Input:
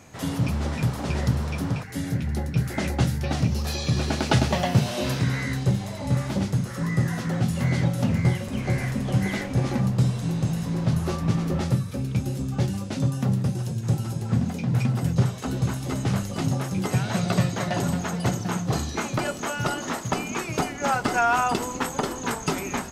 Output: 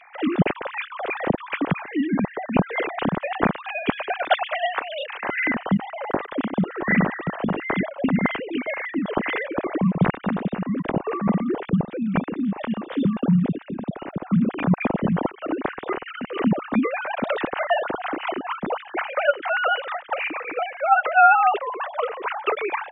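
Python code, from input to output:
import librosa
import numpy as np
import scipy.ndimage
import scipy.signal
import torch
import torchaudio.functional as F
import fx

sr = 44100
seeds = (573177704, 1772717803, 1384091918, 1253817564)

y = fx.sine_speech(x, sr)
y = fx.highpass(y, sr, hz=920.0, slope=12, at=(4.43, 5.29))
y = fx.rider(y, sr, range_db=5, speed_s=2.0)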